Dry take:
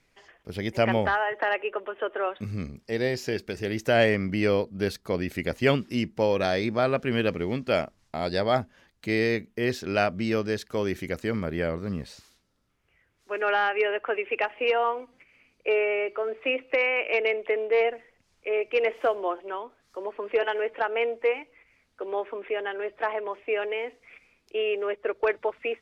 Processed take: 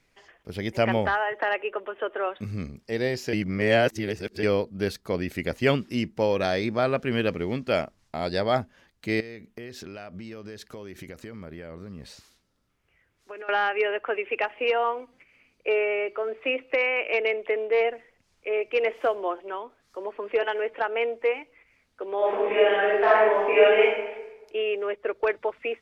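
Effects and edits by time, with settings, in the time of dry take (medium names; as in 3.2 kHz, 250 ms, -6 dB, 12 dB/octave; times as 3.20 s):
3.33–4.43 s: reverse
9.20–13.49 s: compression 20:1, threshold -35 dBFS
22.17–23.83 s: reverb throw, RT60 1.1 s, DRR -9.5 dB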